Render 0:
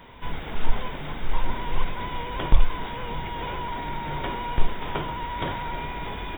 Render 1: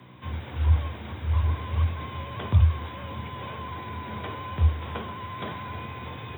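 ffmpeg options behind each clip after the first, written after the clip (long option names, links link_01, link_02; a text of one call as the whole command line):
ffmpeg -i in.wav -af "aeval=exprs='val(0)+0.00631*(sin(2*PI*60*n/s)+sin(2*PI*2*60*n/s)/2+sin(2*PI*3*60*n/s)/3+sin(2*PI*4*60*n/s)/4+sin(2*PI*5*60*n/s)/5)':channel_layout=same,afreqshift=69,volume=-5.5dB" out.wav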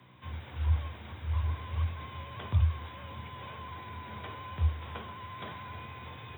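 ffmpeg -i in.wav -af "equalizer=frequency=280:width_type=o:width=2.5:gain=-5,volume=-5.5dB" out.wav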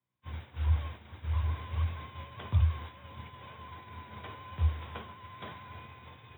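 ffmpeg -i in.wav -af "agate=range=-33dB:threshold=-38dB:ratio=3:detection=peak" out.wav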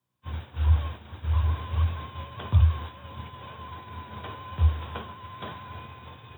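ffmpeg -i in.wav -af "equalizer=frequency=2100:width_type=o:width=0.3:gain=-7.5,volume=6.5dB" out.wav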